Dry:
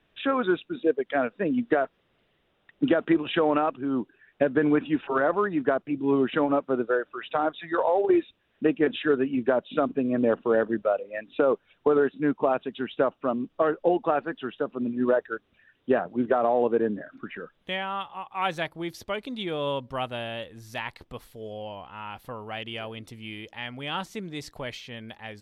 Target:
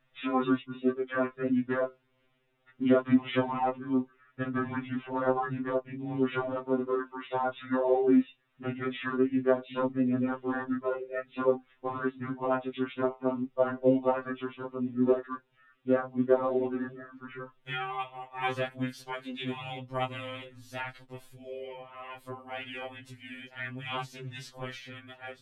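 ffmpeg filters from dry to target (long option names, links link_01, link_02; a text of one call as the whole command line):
ffmpeg -i in.wav -filter_complex "[0:a]asplit=3[link_01][link_02][link_03];[link_02]asetrate=33038,aresample=44100,atempo=1.33484,volume=-2dB[link_04];[link_03]asetrate=35002,aresample=44100,atempo=1.25992,volume=-6dB[link_05];[link_01][link_04][link_05]amix=inputs=3:normalize=0,flanger=delay=6.2:depth=9.8:regen=-63:speed=0.19:shape=sinusoidal,afftfilt=real='re*2.45*eq(mod(b,6),0)':imag='im*2.45*eq(mod(b,6),0)':win_size=2048:overlap=0.75" out.wav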